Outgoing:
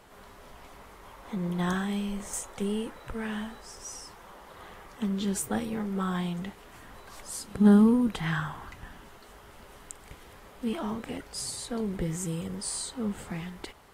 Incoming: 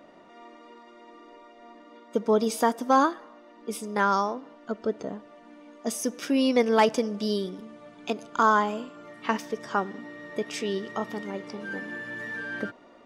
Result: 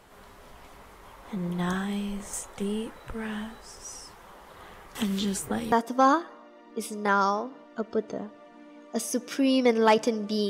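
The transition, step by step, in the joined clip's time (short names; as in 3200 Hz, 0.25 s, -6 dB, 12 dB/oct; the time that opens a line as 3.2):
outgoing
4.95–5.72 three-band squash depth 100%
5.72 switch to incoming from 2.63 s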